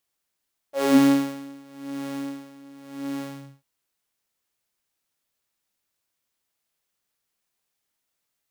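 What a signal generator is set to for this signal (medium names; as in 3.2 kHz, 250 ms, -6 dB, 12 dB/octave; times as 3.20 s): synth patch with tremolo C#4, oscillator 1 saw, sub -10 dB, noise -17 dB, filter highpass, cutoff 110 Hz, Q 6.1, filter envelope 2.5 oct, attack 86 ms, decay 0.83 s, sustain -15 dB, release 0.43 s, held 2.47 s, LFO 0.91 Hz, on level 17.5 dB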